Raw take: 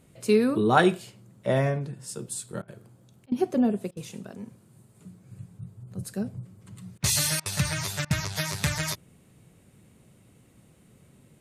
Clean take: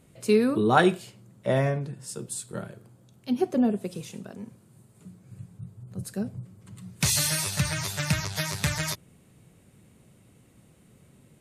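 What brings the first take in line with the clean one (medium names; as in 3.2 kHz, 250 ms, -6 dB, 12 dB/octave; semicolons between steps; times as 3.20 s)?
interpolate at 2.62/3.26/3.91/6.98/7.40/8.05 s, 57 ms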